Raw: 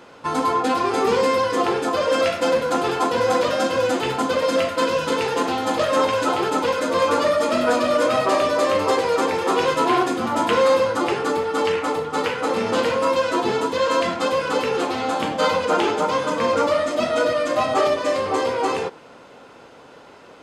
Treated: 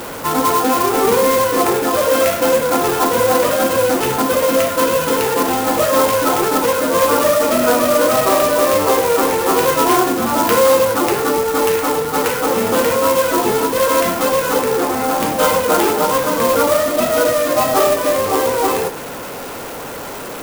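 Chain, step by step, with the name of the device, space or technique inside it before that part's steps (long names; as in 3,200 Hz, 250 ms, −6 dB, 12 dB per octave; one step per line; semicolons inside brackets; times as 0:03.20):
0:14.59–0:15.20: inverse Chebyshev low-pass filter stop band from 9,000 Hz, stop band 70 dB
early CD player with a faulty converter (converter with a step at zero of −28 dBFS; converter with an unsteady clock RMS 0.061 ms)
level +4 dB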